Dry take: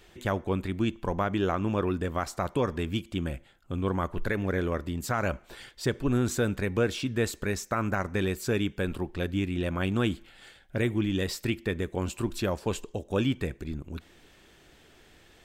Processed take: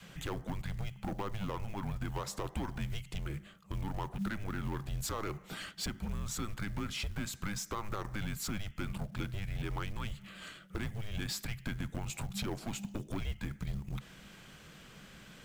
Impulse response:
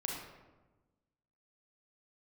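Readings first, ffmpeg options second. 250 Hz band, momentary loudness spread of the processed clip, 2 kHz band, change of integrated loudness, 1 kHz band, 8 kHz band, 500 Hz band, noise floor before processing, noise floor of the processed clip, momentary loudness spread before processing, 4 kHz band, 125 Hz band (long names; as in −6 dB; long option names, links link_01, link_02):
−11.5 dB, 7 LU, −9.0 dB, −9.5 dB, −8.5 dB, −2.5 dB, −16.0 dB, −58 dBFS, −55 dBFS, 7 LU, −4.5 dB, −7.0 dB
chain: -af "adynamicequalizer=threshold=0.00794:dfrequency=500:dqfactor=2.9:tfrequency=500:tqfactor=2.9:attack=5:release=100:ratio=0.375:range=2:mode=cutabove:tftype=bell,acompressor=threshold=-32dB:ratio=8,asoftclip=type=tanh:threshold=-34dB,afreqshift=-210,acrusher=bits=7:mode=log:mix=0:aa=0.000001,equalizer=frequency=100:width_type=o:width=0.23:gain=-9.5,volume=3.5dB"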